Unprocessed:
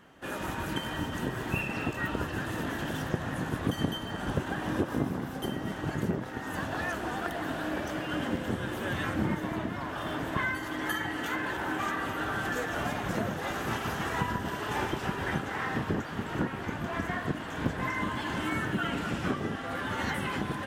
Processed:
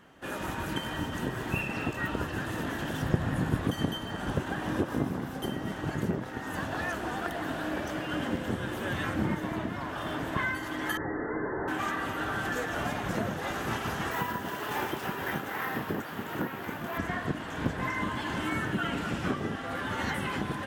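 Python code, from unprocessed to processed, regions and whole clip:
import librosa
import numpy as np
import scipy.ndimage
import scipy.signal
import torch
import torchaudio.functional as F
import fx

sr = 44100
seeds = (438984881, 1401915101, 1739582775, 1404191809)

y = fx.chain(x, sr, fx.low_shelf(hz=230.0, db=8.0),
    fx.notch(hz=6100.0, q=14.0), at=(3.02, 3.61))
y = fx.chain(y, sr, fx.delta_mod(bps=16000, step_db=-42.0),
    fx.brickwall_lowpass(high_hz=2100.0),
    fx.peak_eq(hz=420.0, db=10.0, octaves=0.44), at=(10.97, 11.68))
y = fx.chain(y, sr, fx.highpass(hz=210.0, slope=6),
    fx.resample_bad(factor=3, down='none', up='hold'), at=(14.11, 16.98))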